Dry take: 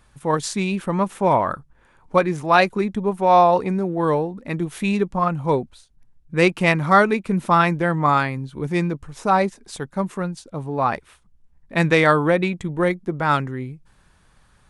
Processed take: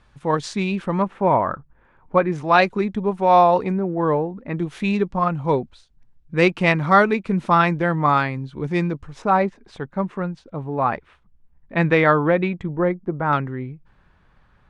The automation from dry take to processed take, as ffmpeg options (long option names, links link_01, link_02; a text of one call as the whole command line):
ffmpeg -i in.wav -af "asetnsamples=nb_out_samples=441:pad=0,asendcmd='1.02 lowpass f 2100;2.32 lowpass f 5000;3.72 lowpass f 2000;4.58 lowpass f 5100;9.22 lowpass f 2600;12.66 lowpass f 1400;13.33 lowpass f 2600',lowpass=4900" out.wav